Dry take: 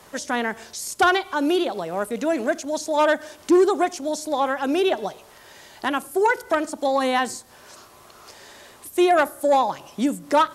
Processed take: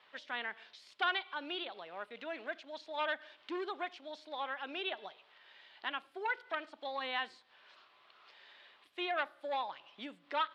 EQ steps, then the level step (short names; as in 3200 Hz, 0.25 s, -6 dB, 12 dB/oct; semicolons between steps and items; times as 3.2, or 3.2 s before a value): band-pass 3500 Hz, Q 1.7; air absorption 430 m; +1.0 dB